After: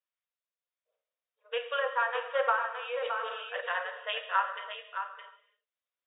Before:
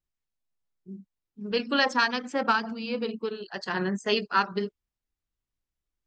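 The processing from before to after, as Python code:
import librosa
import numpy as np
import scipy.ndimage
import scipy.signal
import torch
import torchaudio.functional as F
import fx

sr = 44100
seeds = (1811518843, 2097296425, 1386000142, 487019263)

p1 = fx.brickwall_bandpass(x, sr, low_hz=460.0, high_hz=3800.0)
p2 = fx.notch(p1, sr, hz=820.0, q=5.3)
p3 = fx.env_lowpass_down(p2, sr, base_hz=1300.0, full_db=-22.0)
p4 = p3 * (1.0 - 0.33 / 2.0 + 0.33 / 2.0 * np.cos(2.0 * np.pi * 0.85 * (np.arange(len(p3)) / sr)))
p5 = p4 + fx.echo_single(p4, sr, ms=616, db=-8.0, dry=0)
p6 = fx.rev_gated(p5, sr, seeds[0], gate_ms=370, shape='falling', drr_db=6.5)
y = fx.sustainer(p6, sr, db_per_s=34.0, at=(2.76, 3.61))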